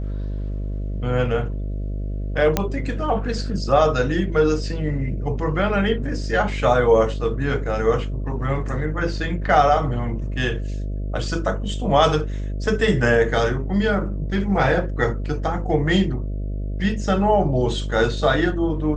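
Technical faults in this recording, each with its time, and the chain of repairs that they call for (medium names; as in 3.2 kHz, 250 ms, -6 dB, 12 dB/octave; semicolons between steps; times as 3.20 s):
buzz 50 Hz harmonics 13 -26 dBFS
2.57 s: pop -4 dBFS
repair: de-click; de-hum 50 Hz, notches 13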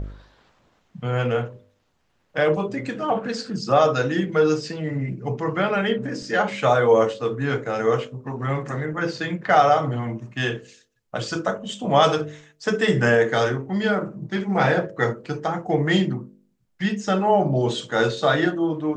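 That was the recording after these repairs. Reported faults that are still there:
nothing left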